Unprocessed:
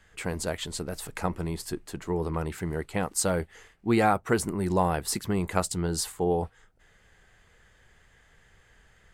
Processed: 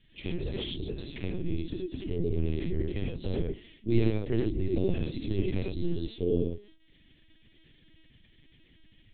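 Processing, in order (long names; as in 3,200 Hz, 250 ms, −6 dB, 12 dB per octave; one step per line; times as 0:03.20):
noise gate with hold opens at −57 dBFS
Chebyshev band-stop filter 350–3,000 Hz, order 2
mains-hum notches 60/120/180/240/300/360/420/480 Hz
dynamic equaliser 2,300 Hz, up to −6 dB, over −46 dBFS, Q 1.2
reverb whose tail is shaped and stops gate 130 ms rising, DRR −1 dB
linear-prediction vocoder at 8 kHz pitch kept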